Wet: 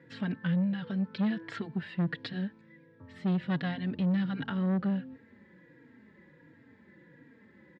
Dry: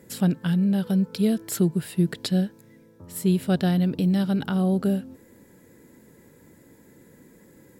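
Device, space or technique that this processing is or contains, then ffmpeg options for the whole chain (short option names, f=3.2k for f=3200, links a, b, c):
barber-pole flanger into a guitar amplifier: -filter_complex "[0:a]asplit=2[a][b];[b]adelay=3.7,afreqshift=-1.4[c];[a][c]amix=inputs=2:normalize=1,asoftclip=type=tanh:threshold=-22dB,highpass=100,equalizer=f=410:t=q:w=4:g=-6,equalizer=f=690:t=q:w=4:g=-5,equalizer=f=1.8k:t=q:w=4:g=9,lowpass=f=3.6k:w=0.5412,lowpass=f=3.6k:w=1.3066,asettb=1/sr,asplit=3[d][e][f];[d]atrim=end=1.184[g];[e]atrim=start=1.18:end=1.58,asetpts=PTS-STARTPTS,afade=t=in:d=0.004:c=qsin,afade=t=out:st=0.396:d=0.004:c=qsin,equalizer=f=1.2k:t=o:w=2:g=5.5[h];[f]atrim=start=1.576[i];[g][h]acrossfade=d=0.004:c1=hsin:c2=qsin[j];[j][i]acrossfade=d=0.004:c1=qsin:c2=hsin,volume=-1dB"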